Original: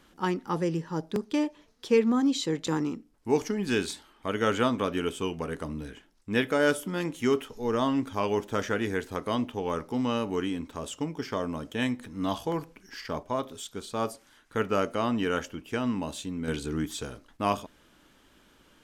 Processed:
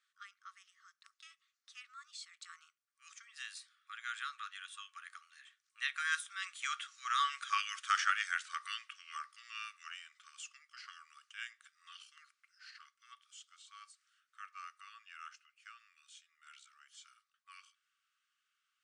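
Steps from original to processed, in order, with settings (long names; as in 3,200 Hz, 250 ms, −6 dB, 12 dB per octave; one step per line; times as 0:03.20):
source passing by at 0:07.66, 29 m/s, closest 19 metres
brick-wall band-pass 1,100–10,000 Hz
level +4 dB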